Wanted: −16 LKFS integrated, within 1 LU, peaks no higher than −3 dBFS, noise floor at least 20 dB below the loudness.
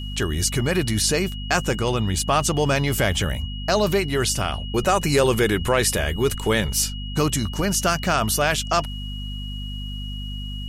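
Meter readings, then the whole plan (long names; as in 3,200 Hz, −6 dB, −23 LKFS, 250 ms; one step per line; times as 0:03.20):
mains hum 50 Hz; hum harmonics up to 250 Hz; level of the hum −28 dBFS; interfering tone 2,900 Hz; level of the tone −36 dBFS; integrated loudness −22.0 LKFS; sample peak −6.0 dBFS; target loudness −16.0 LKFS
→ mains-hum notches 50/100/150/200/250 Hz
notch filter 2,900 Hz, Q 30
level +6 dB
brickwall limiter −3 dBFS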